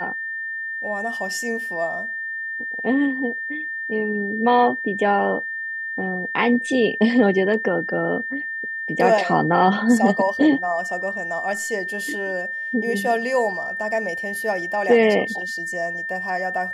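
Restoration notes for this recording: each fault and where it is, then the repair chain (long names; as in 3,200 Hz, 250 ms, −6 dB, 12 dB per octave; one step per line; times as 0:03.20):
whistle 1,800 Hz −26 dBFS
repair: notch filter 1,800 Hz, Q 30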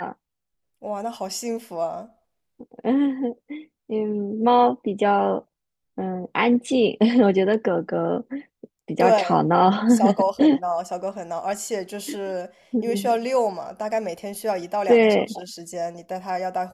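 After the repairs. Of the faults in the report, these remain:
none of them is left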